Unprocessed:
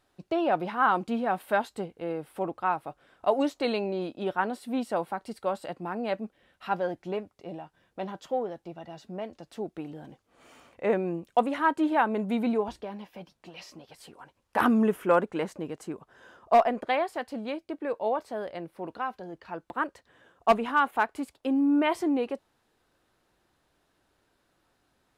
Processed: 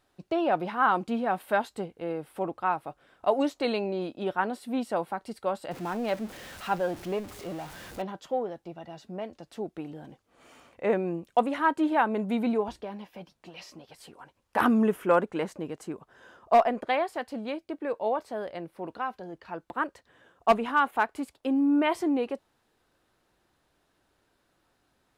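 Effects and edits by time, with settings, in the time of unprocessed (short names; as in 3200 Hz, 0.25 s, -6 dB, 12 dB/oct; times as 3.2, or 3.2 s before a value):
5.71–8.02 zero-crossing step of -39 dBFS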